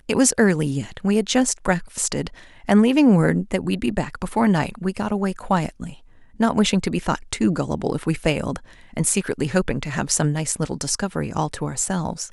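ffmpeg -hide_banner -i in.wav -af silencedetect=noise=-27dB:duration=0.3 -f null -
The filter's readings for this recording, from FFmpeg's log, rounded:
silence_start: 2.27
silence_end: 2.69 | silence_duration: 0.42
silence_start: 5.89
silence_end: 6.40 | silence_duration: 0.51
silence_start: 8.56
silence_end: 8.97 | silence_duration: 0.40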